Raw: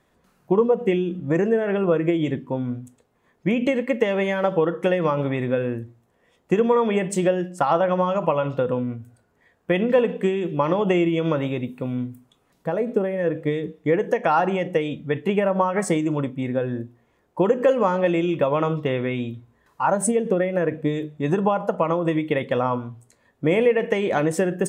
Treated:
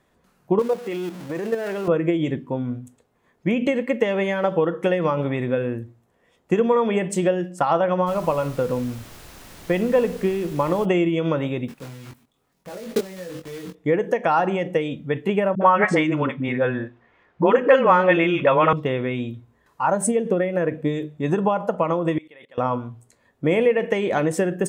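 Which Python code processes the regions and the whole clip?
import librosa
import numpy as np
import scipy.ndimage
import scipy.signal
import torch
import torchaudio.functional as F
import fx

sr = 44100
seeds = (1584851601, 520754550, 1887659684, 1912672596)

y = fx.chain(x, sr, fx.zero_step(step_db=-29.0),
    fx.highpass(hz=320.0, slope=6),
    fx.level_steps(step_db=9), at=(0.59, 1.88))
y = fx.air_absorb(y, sr, metres=210.0, at=(8.06, 10.84), fade=0.02)
y = fx.dmg_noise_colour(y, sr, seeds[0], colour='pink', level_db=-43.0, at=(8.06, 10.84), fade=0.02)
y = fx.chain(y, sr, fx.block_float(bits=3),
    fx.level_steps(step_db=18),
    fx.doubler(ms=22.0, db=-3.5), at=(11.68, 13.75))
y = fx.chain(y, sr, fx.lowpass(hz=4400.0, slope=12),
    fx.peak_eq(hz=1800.0, db=11.0, octaves=2.3),
    fx.dispersion(late='highs', ms=60.0, hz=360.0), at=(15.55, 18.73))
y = fx.chain(y, sr, fx.highpass(hz=1100.0, slope=6),
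    fx.level_steps(step_db=23), at=(22.18, 22.58))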